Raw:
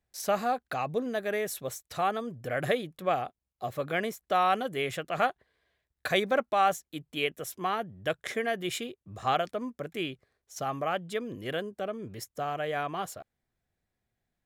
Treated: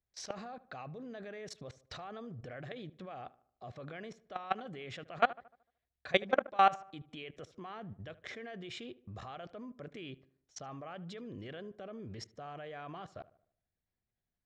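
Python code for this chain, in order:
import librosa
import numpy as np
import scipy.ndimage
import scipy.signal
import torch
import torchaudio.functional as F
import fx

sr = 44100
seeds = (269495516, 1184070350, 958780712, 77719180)

p1 = scipy.signal.sosfilt(scipy.signal.butter(4, 5600.0, 'lowpass', fs=sr, output='sos'), x)
p2 = fx.low_shelf(p1, sr, hz=130.0, db=5.0)
p3 = fx.level_steps(p2, sr, step_db=23)
p4 = p3 + fx.echo_filtered(p3, sr, ms=75, feedback_pct=46, hz=2100.0, wet_db=-18.0, dry=0)
y = F.gain(torch.from_numpy(p4), 1.0).numpy()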